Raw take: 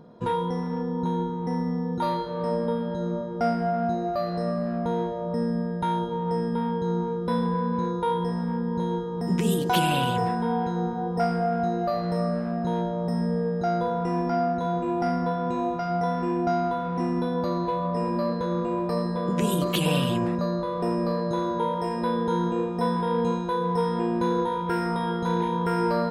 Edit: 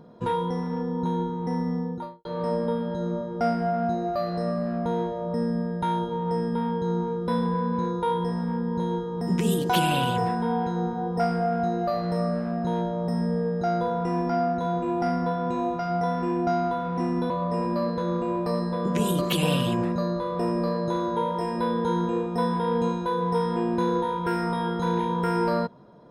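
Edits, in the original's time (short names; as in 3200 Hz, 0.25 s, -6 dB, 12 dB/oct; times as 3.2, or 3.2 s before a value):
1.74–2.25 studio fade out
17.3–17.73 cut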